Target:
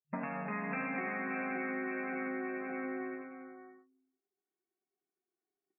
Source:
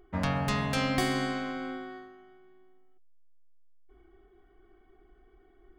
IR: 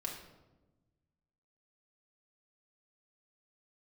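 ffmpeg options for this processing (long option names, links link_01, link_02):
-filter_complex "[0:a]agate=range=-23dB:threshold=-49dB:ratio=16:detection=peak,flanger=delay=7:depth=3.8:regen=-35:speed=0.6:shape=triangular,asplit=2[link_01][link_02];[1:a]atrim=start_sample=2205[link_03];[link_02][link_03]afir=irnorm=-1:irlink=0,volume=-11dB[link_04];[link_01][link_04]amix=inputs=2:normalize=0,afftdn=noise_reduction=29:noise_floor=-57,aecho=1:1:571|1142|1713:0.422|0.101|0.0243,dynaudnorm=framelen=130:gausssize=11:maxgain=16.5dB,adynamicequalizer=threshold=0.02:dfrequency=2100:dqfactor=0.84:tfrequency=2100:tqfactor=0.84:attack=5:release=100:ratio=0.375:range=3:mode=boostabove:tftype=bell,acompressor=threshold=-40dB:ratio=12,afftfilt=real='re*between(b*sr/4096,140,2700)':imag='im*between(b*sr/4096,140,2700)':win_size=4096:overlap=0.75,volume=6dB"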